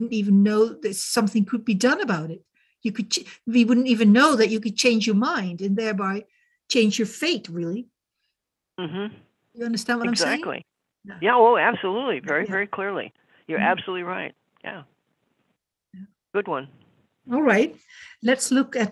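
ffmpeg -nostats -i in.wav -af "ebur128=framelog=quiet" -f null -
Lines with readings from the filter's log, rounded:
Integrated loudness:
  I:         -22.1 LUFS
  Threshold: -33.1 LUFS
Loudness range:
  LRA:         9.2 LU
  Threshold: -43.7 LUFS
  LRA low:   -29.4 LUFS
  LRA high:  -20.2 LUFS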